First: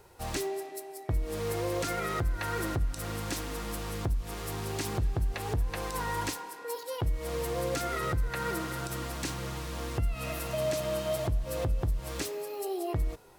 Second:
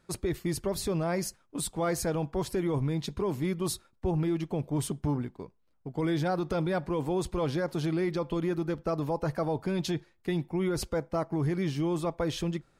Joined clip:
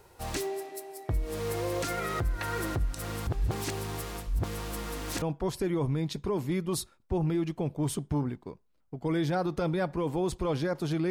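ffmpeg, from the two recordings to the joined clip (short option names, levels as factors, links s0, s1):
-filter_complex "[0:a]apad=whole_dur=11.1,atrim=end=11.1,asplit=2[s0][s1];[s0]atrim=end=3.272[s2];[s1]atrim=start=3.268:end=5.222,asetpts=PTS-STARTPTS,areverse[s3];[1:a]atrim=start=2.148:end=8.03[s4];[s2][s3]acrossfade=d=0.004:c1=hsin:c2=hsin[s5];[s5][s4]acrossfade=d=0.004:c1=hsin:c2=hsin"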